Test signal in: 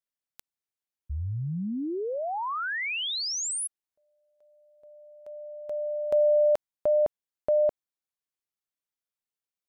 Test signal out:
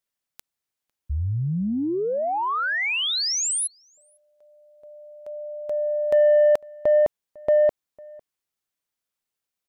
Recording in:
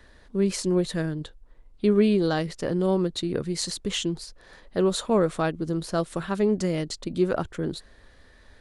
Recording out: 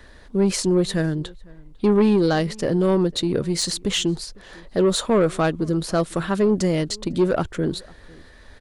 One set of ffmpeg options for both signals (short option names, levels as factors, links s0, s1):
-filter_complex "[0:a]asoftclip=type=tanh:threshold=0.133,asplit=2[s0][s1];[s1]adelay=501.5,volume=0.0562,highshelf=f=4000:g=-11.3[s2];[s0][s2]amix=inputs=2:normalize=0,volume=2.11"